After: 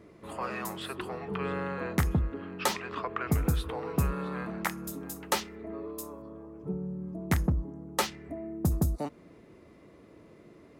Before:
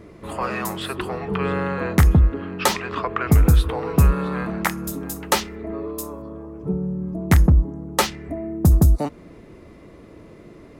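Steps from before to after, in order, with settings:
high-pass filter 110 Hz 6 dB per octave
level −9 dB

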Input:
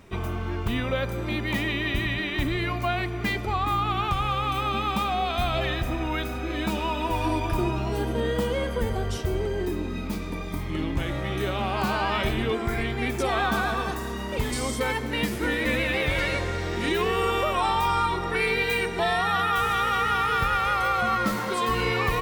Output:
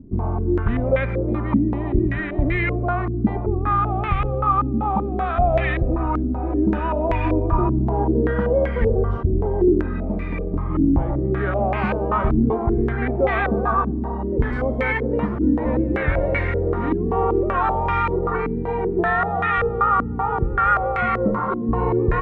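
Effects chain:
spectral tilt −2 dB per octave
low-pass on a step sequencer 5.2 Hz 270–2,100 Hz

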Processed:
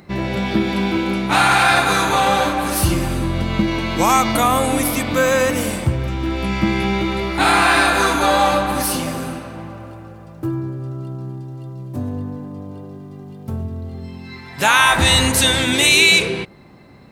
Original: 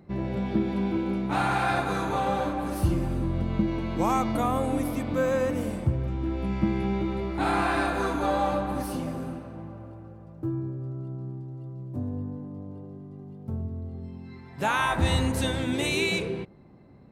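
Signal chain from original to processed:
tilt shelving filter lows −7.5 dB, about 1,200 Hz
in parallel at −0.5 dB: brickwall limiter −19.5 dBFS, peak gain reduction 7 dB
on the sum: level +8 dB

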